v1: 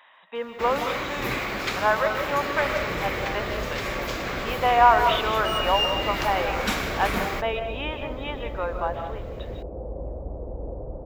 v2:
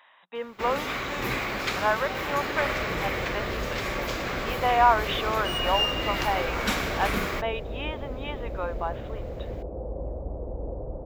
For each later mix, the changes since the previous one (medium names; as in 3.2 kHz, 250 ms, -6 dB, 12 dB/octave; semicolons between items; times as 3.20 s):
reverb: off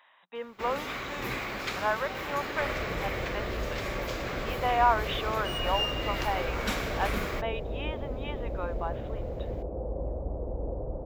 speech -4.0 dB; first sound -5.0 dB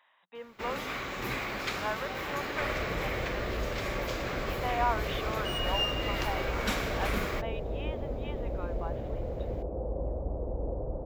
speech -6.0 dB